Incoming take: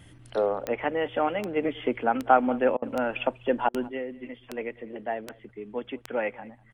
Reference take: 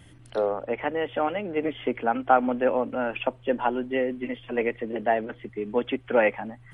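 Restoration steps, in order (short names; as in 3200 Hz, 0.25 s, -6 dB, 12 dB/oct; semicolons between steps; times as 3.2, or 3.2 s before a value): de-click; interpolate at 2.77/3.69, 51 ms; inverse comb 0.196 s -22.5 dB; gain 0 dB, from 3.88 s +8 dB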